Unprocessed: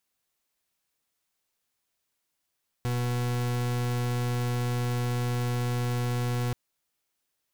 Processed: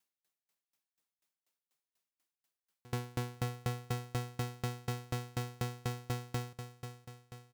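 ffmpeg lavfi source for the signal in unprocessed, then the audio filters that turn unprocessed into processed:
-f lavfi -i "aevalsrc='0.0398*(2*lt(mod(122*t,1),0.4)-1)':d=3.68:s=44100"
-filter_complex "[0:a]highpass=120,asplit=2[a][b];[b]aecho=0:1:518|1036|1554|2072|2590|3108:0.376|0.199|0.106|0.056|0.0297|0.0157[c];[a][c]amix=inputs=2:normalize=0,aeval=exprs='val(0)*pow(10,-31*if(lt(mod(4.1*n/s,1),2*abs(4.1)/1000),1-mod(4.1*n/s,1)/(2*abs(4.1)/1000),(mod(4.1*n/s,1)-2*abs(4.1)/1000)/(1-2*abs(4.1)/1000))/20)':c=same"

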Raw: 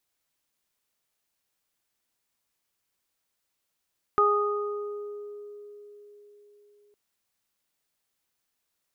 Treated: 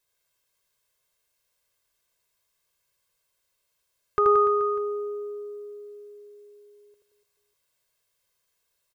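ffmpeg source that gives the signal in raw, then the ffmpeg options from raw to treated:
-f lavfi -i "aevalsrc='0.075*pow(10,-3*t/4.49)*sin(2*PI*413*t)+0.0299*pow(10,-3*t/1.43)*sin(2*PI*826*t)+0.133*pow(10,-3*t/1.6)*sin(2*PI*1239*t)':d=2.76:s=44100"
-filter_complex "[0:a]aecho=1:1:1.9:0.73,asplit=2[a][b];[b]aecho=0:1:80|176|291.2|429.4|595.3:0.631|0.398|0.251|0.158|0.1[c];[a][c]amix=inputs=2:normalize=0"

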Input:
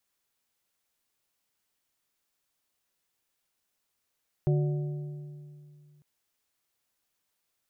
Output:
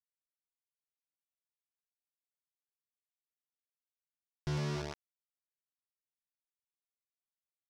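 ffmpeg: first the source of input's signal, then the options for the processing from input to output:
-f lavfi -i "aevalsrc='0.0891*pow(10,-3*t/2.55)*sin(2*PI*147*t)+0.0376*pow(10,-3*t/1.937)*sin(2*PI*367.5*t)+0.0158*pow(10,-3*t/1.682)*sin(2*PI*588*t)+0.00668*pow(10,-3*t/1.573)*sin(2*PI*735*t)':d=1.55:s=44100"
-af "aresample=11025,acrusher=bits=4:mix=0:aa=0.000001,aresample=44100,asoftclip=type=tanh:threshold=-31.5dB"

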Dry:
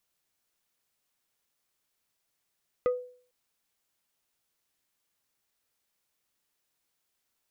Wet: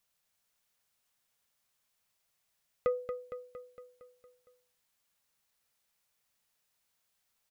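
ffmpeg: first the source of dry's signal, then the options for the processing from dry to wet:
-f lavfi -i "aevalsrc='0.1*pow(10,-3*t/0.48)*sin(2*PI*497*t)+0.0316*pow(10,-3*t/0.16)*sin(2*PI*1242.5*t)+0.01*pow(10,-3*t/0.091)*sin(2*PI*1988*t)+0.00316*pow(10,-3*t/0.07)*sin(2*PI*2485*t)+0.001*pow(10,-3*t/0.051)*sin(2*PI*3230.5*t)':d=0.45:s=44100"
-filter_complex "[0:a]equalizer=f=330:w=3:g=-10.5,asplit=2[a][b];[b]aecho=0:1:230|460|690|920|1150|1380|1610:0.398|0.235|0.139|0.0818|0.0482|0.0285|0.0168[c];[a][c]amix=inputs=2:normalize=0"

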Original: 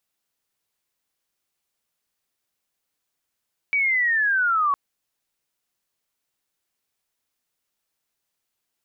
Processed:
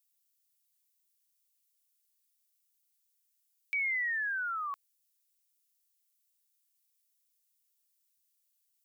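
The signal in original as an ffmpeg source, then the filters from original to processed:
-f lavfi -i "aevalsrc='pow(10,(-18+0.5*t/1.01)/20)*sin(2*PI*(2300*t-1200*t*t/(2*1.01)))':d=1.01:s=44100"
-af "aderivative"

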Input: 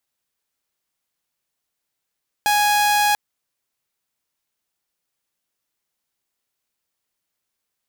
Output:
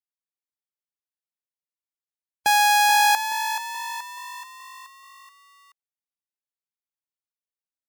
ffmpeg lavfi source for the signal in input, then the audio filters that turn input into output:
-f lavfi -i "aevalsrc='0.237*(2*mod(830*t,1)-1)':d=0.69:s=44100"
-filter_complex "[0:a]highpass=89,afftdn=nr=23:nf=-35,asplit=2[a][b];[b]asplit=6[c][d][e][f][g][h];[c]adelay=428,afreqshift=50,volume=-9.5dB[i];[d]adelay=856,afreqshift=100,volume=-15dB[j];[e]adelay=1284,afreqshift=150,volume=-20.5dB[k];[f]adelay=1712,afreqshift=200,volume=-26dB[l];[g]adelay=2140,afreqshift=250,volume=-31.6dB[m];[h]adelay=2568,afreqshift=300,volume=-37.1dB[n];[i][j][k][l][m][n]amix=inputs=6:normalize=0[o];[a][o]amix=inputs=2:normalize=0"

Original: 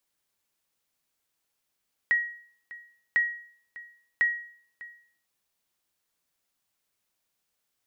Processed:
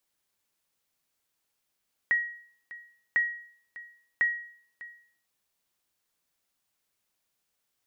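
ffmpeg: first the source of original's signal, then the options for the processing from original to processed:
-f lavfi -i "aevalsrc='0.15*(sin(2*PI*1900*mod(t,1.05))*exp(-6.91*mod(t,1.05)/0.54)+0.106*sin(2*PI*1900*max(mod(t,1.05)-0.6,0))*exp(-6.91*max(mod(t,1.05)-0.6,0)/0.54))':d=3.15:s=44100"
-filter_complex "[0:a]acrossover=split=2800[a][b];[b]acompressor=threshold=-58dB:ratio=4:attack=1:release=60[c];[a][c]amix=inputs=2:normalize=0"

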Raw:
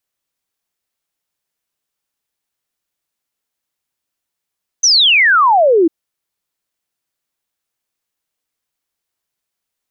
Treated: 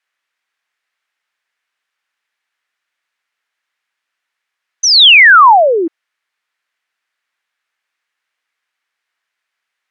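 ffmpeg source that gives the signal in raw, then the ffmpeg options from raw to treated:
-f lavfi -i "aevalsrc='0.447*clip(min(t,1.05-t)/0.01,0,1)*sin(2*PI*6300*1.05/log(310/6300)*(exp(log(310/6300)*t/1.05)-1))':d=1.05:s=44100"
-af "bandpass=f=1.8k:t=q:w=1.7:csg=0,alimiter=level_in=14.5dB:limit=-1dB:release=50:level=0:latency=1"

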